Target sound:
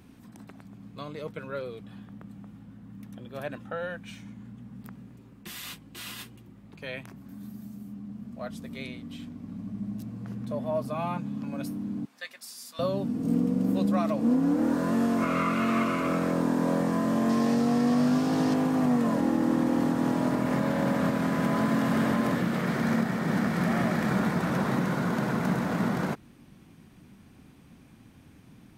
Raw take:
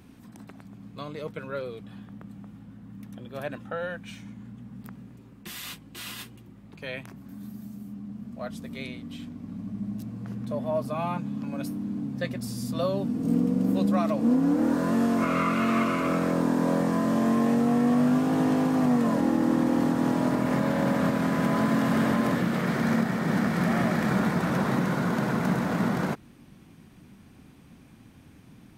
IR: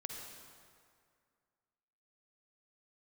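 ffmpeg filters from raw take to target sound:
-filter_complex "[0:a]asettb=1/sr,asplit=3[link_01][link_02][link_03];[link_01]atrim=end=12.054[link_04];[link_02]atrim=start=12.05:end=12.79,asetpts=PTS-STARTPTS,afade=type=in:duration=0.004:curve=qsin,afade=type=out:start_time=0.736:duration=0.004:curve=qsin,highpass=1300[link_05];[link_03]atrim=start=12.786[link_06];[link_04][link_05]acrossfade=duration=0.004:curve1=hsin:curve2=qsin[link_07];[link_07][link_06]acrossfade=duration=0.004:curve1=qsin:curve2=hsin,asettb=1/sr,asplit=3[link_08][link_09][link_10];[link_08]atrim=end=17.294[link_11];[link_09]atrim=start=17.29:end=18.54,asetpts=PTS-STARTPTS,afade=type=in:duration=0.004:curve=qsin,afade=type=out:start_time=1.246:duration=0.004:curve=qsin,equalizer=frequency=4900:width_type=o:width=0.87:gain=9.5[link_12];[link_10]atrim=start=18.536[link_13];[link_11][link_12]acrossfade=duration=0.004:curve1=hsin:curve2=qsin[link_14];[link_14][link_13]acrossfade=duration=0.004:curve1=qsin:curve2=hsin,volume=-1.5dB"

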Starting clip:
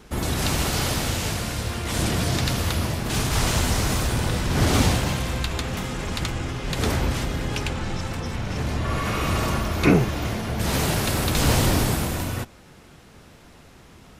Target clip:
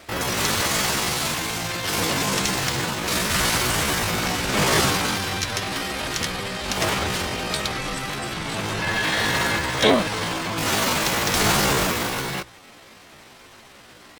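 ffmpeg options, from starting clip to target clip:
ffmpeg -i in.wav -filter_complex "[0:a]asplit=2[link_01][link_02];[link_02]highpass=frequency=720:poles=1,volume=12dB,asoftclip=type=tanh:threshold=-4dB[link_03];[link_01][link_03]amix=inputs=2:normalize=0,lowpass=frequency=4200:poles=1,volume=-6dB,asetrate=66075,aresample=44100,atempo=0.66742,bandreject=frequency=60:width_type=h:width=6,bandreject=frequency=120:width_type=h:width=6" out.wav

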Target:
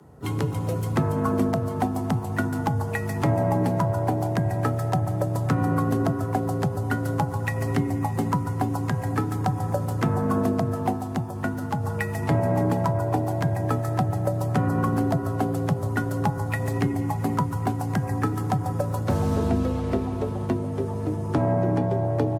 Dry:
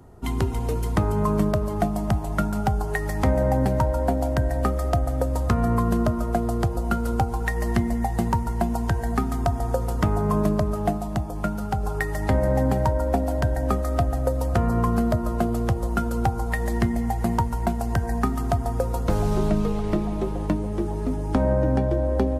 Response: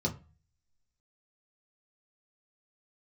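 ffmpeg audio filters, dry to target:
-filter_complex "[0:a]afreqshift=50,asplit=4[link_01][link_02][link_03][link_04];[link_02]asetrate=33038,aresample=44100,atempo=1.33484,volume=-16dB[link_05];[link_03]asetrate=55563,aresample=44100,atempo=0.793701,volume=-17dB[link_06];[link_04]asetrate=58866,aresample=44100,atempo=0.749154,volume=-14dB[link_07];[link_01][link_05][link_06][link_07]amix=inputs=4:normalize=0,volume=-2dB"

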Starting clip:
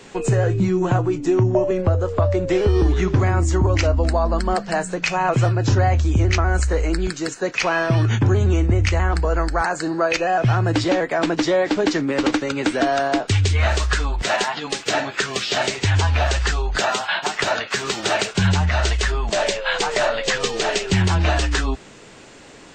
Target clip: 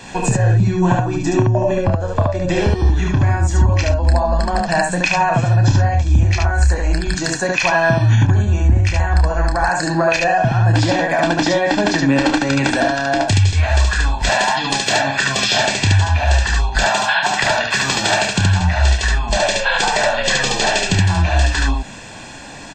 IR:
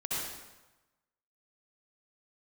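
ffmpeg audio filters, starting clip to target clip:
-af "aecho=1:1:1.2:0.68,acompressor=threshold=-20dB:ratio=6,aecho=1:1:29.15|72.89:0.447|0.794,volume=5.5dB"

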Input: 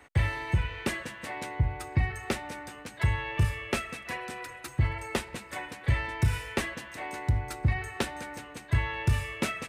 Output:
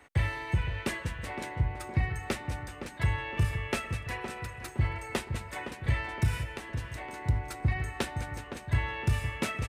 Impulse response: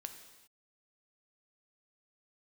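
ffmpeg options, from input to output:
-filter_complex "[0:a]asplit=3[link_01][link_02][link_03];[link_01]afade=type=out:start_time=6.43:duration=0.02[link_04];[link_02]acompressor=threshold=-36dB:ratio=6,afade=type=in:start_time=6.43:duration=0.02,afade=type=out:start_time=7.24:duration=0.02[link_05];[link_03]afade=type=in:start_time=7.24:duration=0.02[link_06];[link_04][link_05][link_06]amix=inputs=3:normalize=0,asplit=2[link_07][link_08];[link_08]adelay=514,lowpass=frequency=1500:poles=1,volume=-8dB,asplit=2[link_09][link_10];[link_10]adelay=514,lowpass=frequency=1500:poles=1,volume=0.48,asplit=2[link_11][link_12];[link_12]adelay=514,lowpass=frequency=1500:poles=1,volume=0.48,asplit=2[link_13][link_14];[link_14]adelay=514,lowpass=frequency=1500:poles=1,volume=0.48,asplit=2[link_15][link_16];[link_16]adelay=514,lowpass=frequency=1500:poles=1,volume=0.48,asplit=2[link_17][link_18];[link_18]adelay=514,lowpass=frequency=1500:poles=1,volume=0.48[link_19];[link_09][link_11][link_13][link_15][link_17][link_19]amix=inputs=6:normalize=0[link_20];[link_07][link_20]amix=inputs=2:normalize=0,volume=-2dB"

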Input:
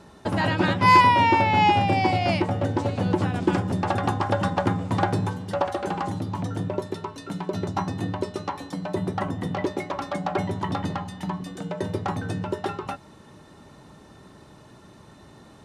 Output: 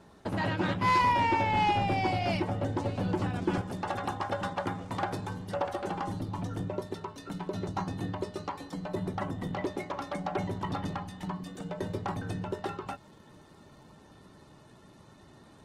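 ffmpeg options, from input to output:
ffmpeg -i in.wav -filter_complex "[0:a]asettb=1/sr,asplit=3[link_01][link_02][link_03];[link_01]atrim=end=3.614[link_04];[link_02]atrim=start=3.61:end=5.3,asetpts=PTS-STARTPTS,afade=type=in:duration=0.004:curve=qsin,afade=type=out:start_time=1.686:duration=0.004:curve=qsin,lowshelf=frequency=330:gain=-8[link_05];[link_03]atrim=start=5.296[link_06];[link_04][link_05]acrossfade=duration=0.004:curve1=hsin:curve2=qsin[link_07];[link_07][link_06]acrossfade=duration=0.004:curve1=qsin:curve2=hsin,asoftclip=type=tanh:threshold=-12.5dB,volume=-6dB" -ar 48000 -c:a libopus -b:a 16k out.opus

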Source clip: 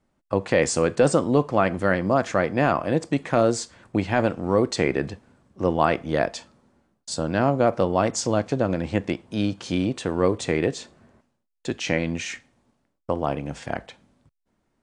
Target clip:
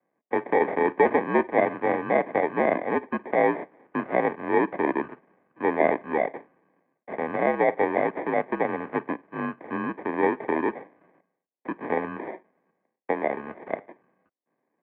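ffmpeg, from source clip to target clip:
ffmpeg -i in.wav -af "acrusher=samples=31:mix=1:aa=0.000001,highpass=frequency=330:width_type=q:width=0.5412,highpass=frequency=330:width_type=q:width=1.307,lowpass=frequency=2200:width_type=q:width=0.5176,lowpass=frequency=2200:width_type=q:width=0.7071,lowpass=frequency=2200:width_type=q:width=1.932,afreqshift=-62" out.wav

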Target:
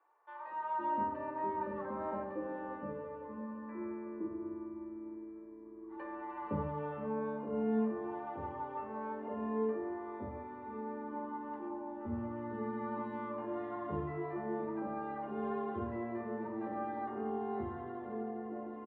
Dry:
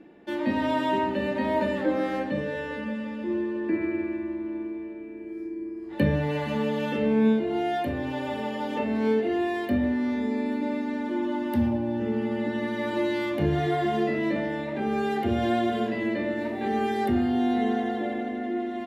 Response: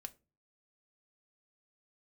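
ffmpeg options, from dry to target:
-filter_complex "[0:a]lowpass=frequency=1100:width_type=q:width=6.1,acrossover=split=710[link_01][link_02];[link_01]adelay=510[link_03];[link_03][link_02]amix=inputs=2:normalize=0[link_04];[1:a]atrim=start_sample=2205,asetrate=79380,aresample=44100[link_05];[link_04][link_05]afir=irnorm=-1:irlink=0,volume=-3.5dB"

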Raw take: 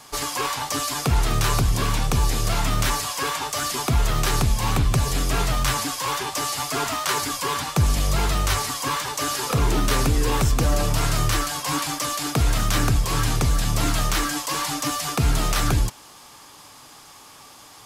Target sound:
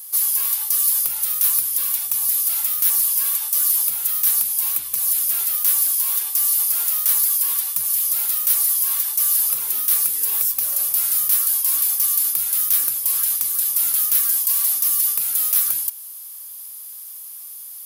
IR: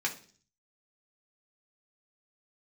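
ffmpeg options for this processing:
-af "aderivative,aeval=exprs='0.282*sin(PI/2*2.24*val(0)/0.282)':channel_layout=same,aexciter=amount=6.5:drive=7.3:freq=10000,volume=-10.5dB"

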